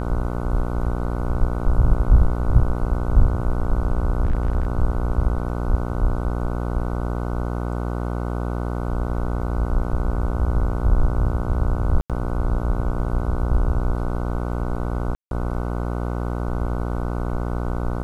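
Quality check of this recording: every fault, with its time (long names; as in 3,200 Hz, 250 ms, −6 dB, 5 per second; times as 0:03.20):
mains buzz 60 Hz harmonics 25 −25 dBFS
0:04.25–0:04.65: clipping −15 dBFS
0:12.01–0:12.10: drop-out 87 ms
0:15.15–0:15.31: drop-out 162 ms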